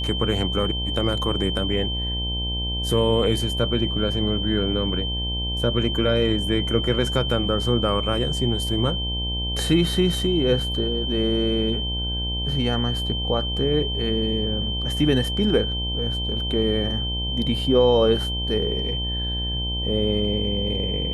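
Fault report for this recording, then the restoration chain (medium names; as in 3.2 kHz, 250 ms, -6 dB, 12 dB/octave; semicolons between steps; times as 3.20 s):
buzz 60 Hz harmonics 17 -28 dBFS
whine 3.1 kHz -27 dBFS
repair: de-hum 60 Hz, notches 17; band-stop 3.1 kHz, Q 30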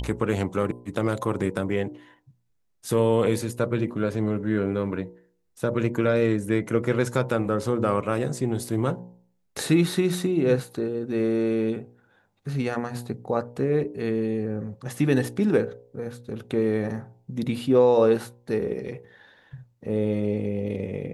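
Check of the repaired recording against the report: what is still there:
nothing left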